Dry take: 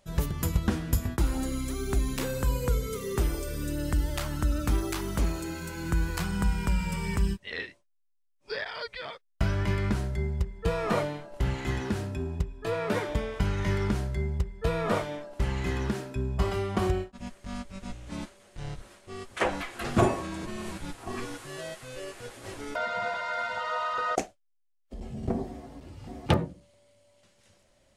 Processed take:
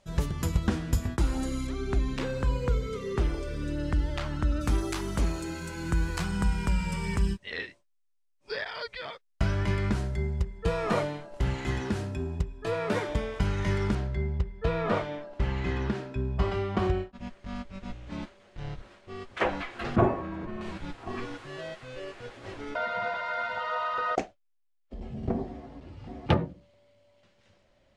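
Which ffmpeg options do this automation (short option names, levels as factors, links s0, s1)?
-af "asetnsamples=n=441:p=0,asendcmd='1.67 lowpass f 4000;4.61 lowpass f 9500;13.95 lowpass f 4000;19.96 lowpass f 1700;20.61 lowpass f 3900',lowpass=8400"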